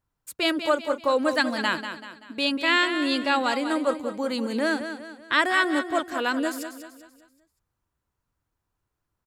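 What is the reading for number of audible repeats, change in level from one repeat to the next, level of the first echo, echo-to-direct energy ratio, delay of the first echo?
4, -7.5 dB, -9.5 dB, -8.5 dB, 0.192 s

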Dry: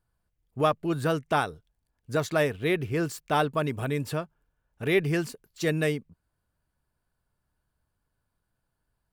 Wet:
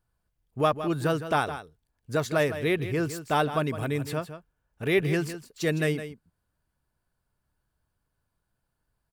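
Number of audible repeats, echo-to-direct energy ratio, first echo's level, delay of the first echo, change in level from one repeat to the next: 1, -11.5 dB, -11.5 dB, 0.161 s, no steady repeat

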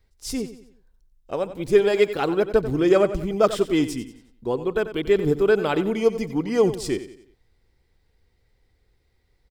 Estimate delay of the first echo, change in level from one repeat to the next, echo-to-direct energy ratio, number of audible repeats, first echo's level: 91 ms, -7.5 dB, -12.0 dB, 3, -13.0 dB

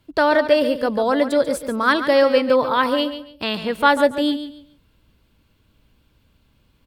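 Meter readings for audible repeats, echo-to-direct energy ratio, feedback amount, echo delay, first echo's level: 2, -10.5 dB, 25%, 0.141 s, -11.0 dB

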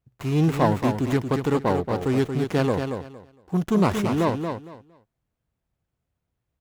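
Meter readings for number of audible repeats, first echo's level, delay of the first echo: 3, -6.5 dB, 0.23 s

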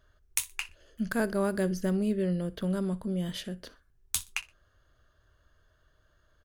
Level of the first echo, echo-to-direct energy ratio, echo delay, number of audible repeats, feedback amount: -20.5 dB, -20.0 dB, 61 ms, 2, 29%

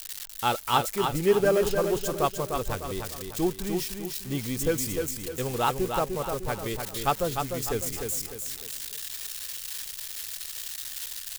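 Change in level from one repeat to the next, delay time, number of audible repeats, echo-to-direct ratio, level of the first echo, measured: -8.0 dB, 0.301 s, 4, -4.5 dB, -5.5 dB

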